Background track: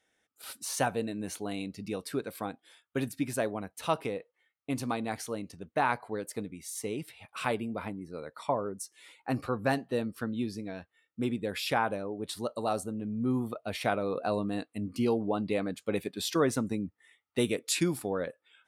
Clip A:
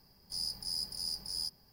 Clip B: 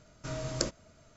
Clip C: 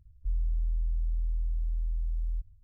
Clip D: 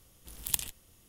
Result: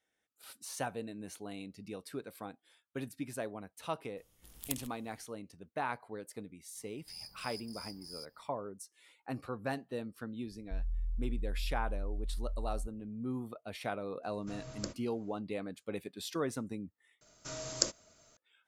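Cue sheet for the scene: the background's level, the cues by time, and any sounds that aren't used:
background track −8.5 dB
0:04.17: mix in D −9 dB
0:06.76: mix in A −11 dB
0:10.46: mix in C −6.5 dB
0:14.23: mix in B −10.5 dB
0:17.21: overwrite with B −4.5 dB + bass and treble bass −8 dB, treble +10 dB

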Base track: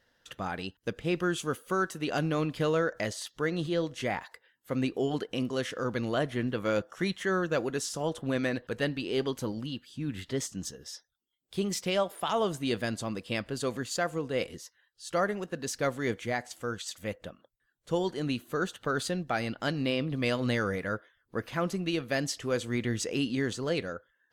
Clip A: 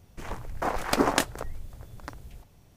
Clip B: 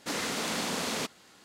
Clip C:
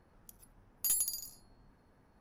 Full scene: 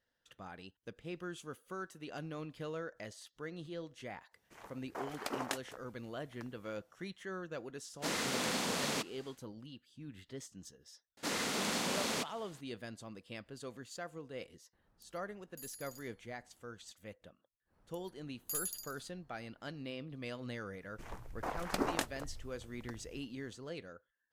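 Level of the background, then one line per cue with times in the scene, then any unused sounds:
base track −14.5 dB
0:04.33: mix in A −13.5 dB + high-pass filter 430 Hz 6 dB per octave
0:07.96: mix in B −3.5 dB, fades 0.10 s
0:11.17: mix in B −3.5 dB
0:14.73: mix in C −10 dB + brickwall limiter −32.5 dBFS
0:17.65: mix in C −7 dB, fades 0.10 s
0:20.81: mix in A −11 dB

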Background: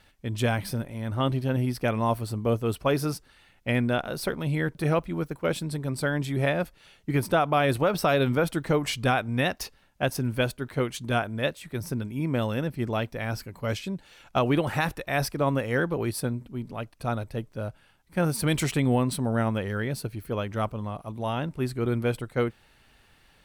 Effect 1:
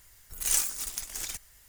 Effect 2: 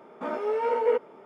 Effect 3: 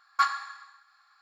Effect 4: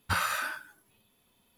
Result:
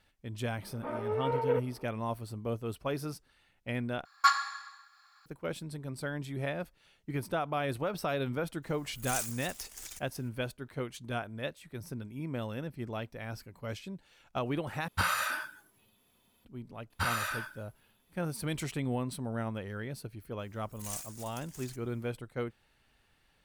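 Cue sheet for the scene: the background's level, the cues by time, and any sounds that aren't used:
background −10 dB
0:00.62: mix in 2 −5.5 dB + high-frequency loss of the air 150 metres
0:04.05: overwrite with 3 −0.5 dB + high-shelf EQ 4,400 Hz +8 dB
0:08.62: mix in 1 −9.5 dB, fades 0.02 s
0:14.88: overwrite with 4 −0.5 dB
0:16.90: mix in 4 −3 dB
0:20.39: mix in 1 −14.5 dB

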